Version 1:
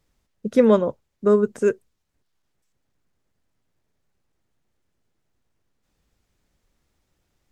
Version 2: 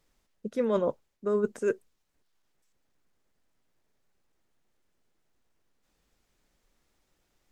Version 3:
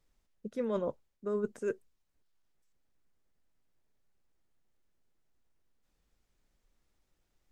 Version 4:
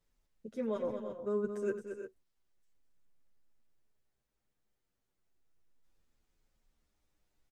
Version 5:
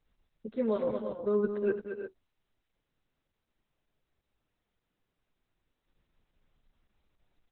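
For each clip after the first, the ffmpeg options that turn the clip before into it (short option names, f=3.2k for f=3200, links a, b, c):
-af "equalizer=f=87:w=0.61:g=-8.5,areverse,acompressor=threshold=-23dB:ratio=16,areverse"
-af "lowshelf=f=120:g=7.5,volume=-7dB"
-filter_complex "[0:a]asplit=2[a][b];[b]aecho=0:1:89|220|312|349:0.141|0.376|0.2|0.266[c];[a][c]amix=inputs=2:normalize=0,asplit=2[d][e];[e]adelay=8.7,afreqshift=-0.35[f];[d][f]amix=inputs=2:normalize=1"
-af "volume=6dB" -ar 48000 -c:a libopus -b:a 8k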